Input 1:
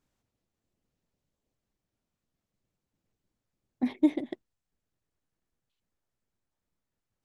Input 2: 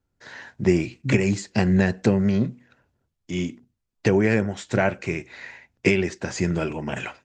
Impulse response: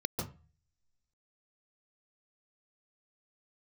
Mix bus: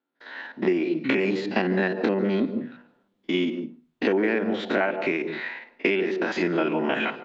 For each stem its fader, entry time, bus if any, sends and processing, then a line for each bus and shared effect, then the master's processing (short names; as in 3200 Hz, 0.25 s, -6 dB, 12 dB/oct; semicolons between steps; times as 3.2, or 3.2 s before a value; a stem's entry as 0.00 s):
-2.0 dB, 0.20 s, no send, dry
+2.0 dB, 0.00 s, send -17 dB, stepped spectrum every 50 ms; elliptic band-pass 270–3900 Hz, stop band 50 dB; AGC gain up to 10 dB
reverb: on, RT60 0.35 s, pre-delay 0.139 s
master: compressor 6:1, threshold -20 dBFS, peak gain reduction 12 dB